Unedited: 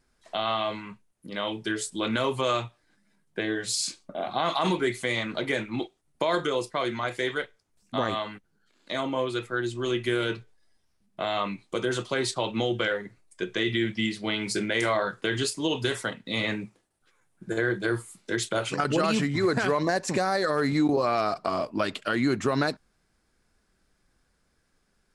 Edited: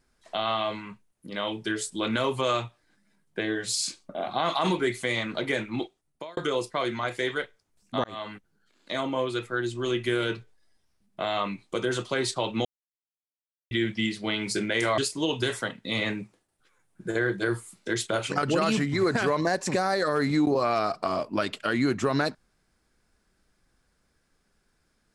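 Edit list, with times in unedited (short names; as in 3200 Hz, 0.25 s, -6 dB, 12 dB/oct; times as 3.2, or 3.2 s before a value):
5.83–6.37 fade out
8.04–8.32 fade in
12.65–13.71 mute
14.98–15.4 cut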